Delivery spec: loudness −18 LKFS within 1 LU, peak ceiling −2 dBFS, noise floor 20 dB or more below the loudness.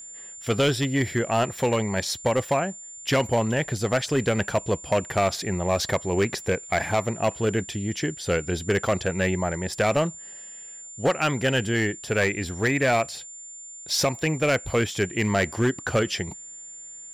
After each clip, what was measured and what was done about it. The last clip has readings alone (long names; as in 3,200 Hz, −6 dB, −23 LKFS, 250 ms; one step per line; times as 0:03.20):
share of clipped samples 1.6%; peaks flattened at −15.5 dBFS; interfering tone 7,200 Hz; level of the tone −39 dBFS; integrated loudness −25.0 LKFS; sample peak −15.5 dBFS; target loudness −18.0 LKFS
→ clipped peaks rebuilt −15.5 dBFS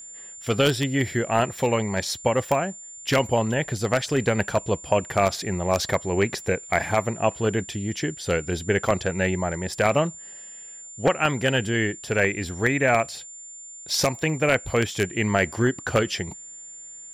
share of clipped samples 0.0%; interfering tone 7,200 Hz; level of the tone −39 dBFS
→ notch filter 7,200 Hz, Q 30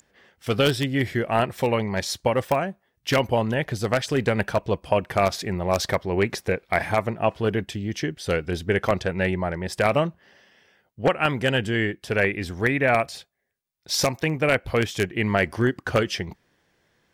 interfering tone none found; integrated loudness −24.0 LKFS; sample peak −6.5 dBFS; target loudness −18.0 LKFS
→ level +6 dB
brickwall limiter −2 dBFS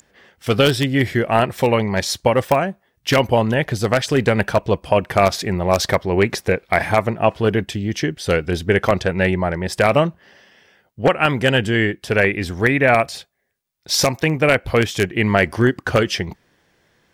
integrated loudness −18.5 LKFS; sample peak −2.0 dBFS; background noise floor −64 dBFS